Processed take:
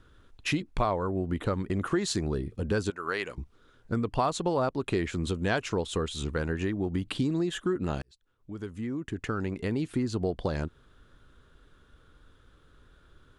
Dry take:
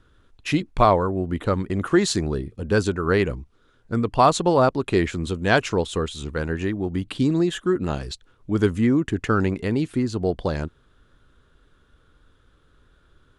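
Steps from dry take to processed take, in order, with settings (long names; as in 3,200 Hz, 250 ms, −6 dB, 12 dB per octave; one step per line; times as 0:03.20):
0:02.90–0:03.38: high-pass filter 1,400 Hz 6 dB per octave
downward compressor 3 to 1, threshold −27 dBFS, peak gain reduction 12 dB
0:08.02–0:09.89: fade in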